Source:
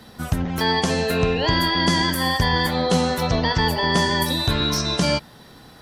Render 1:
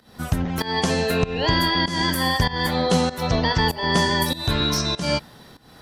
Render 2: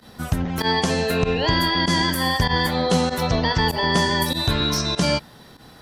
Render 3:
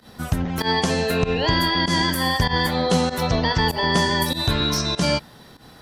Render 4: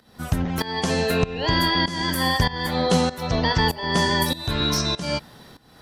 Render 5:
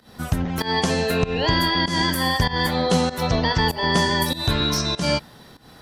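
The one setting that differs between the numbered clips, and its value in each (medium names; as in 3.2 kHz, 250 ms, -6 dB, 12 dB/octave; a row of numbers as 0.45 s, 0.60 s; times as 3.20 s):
volume shaper, release: 276 ms, 61 ms, 96 ms, 467 ms, 188 ms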